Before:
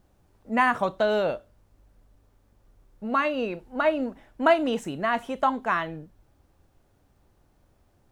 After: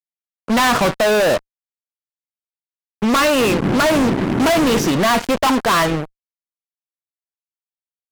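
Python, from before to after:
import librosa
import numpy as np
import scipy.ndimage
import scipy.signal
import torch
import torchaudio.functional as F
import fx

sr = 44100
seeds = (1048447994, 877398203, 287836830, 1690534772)

y = fx.freq_compress(x, sr, knee_hz=3400.0, ratio=1.5)
y = fx.dmg_noise_band(y, sr, seeds[0], low_hz=110.0, high_hz=370.0, level_db=-37.0, at=(3.39, 4.86), fade=0.02)
y = fx.fuzz(y, sr, gain_db=42.0, gate_db=-41.0)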